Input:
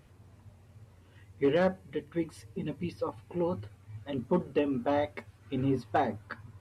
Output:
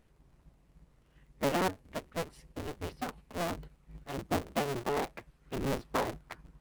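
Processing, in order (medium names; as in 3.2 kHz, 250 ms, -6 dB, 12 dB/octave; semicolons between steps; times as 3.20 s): cycle switcher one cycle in 2, inverted; in parallel at -3.5 dB: hysteresis with a dead band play -45.5 dBFS; on the sum: trim -8.5 dB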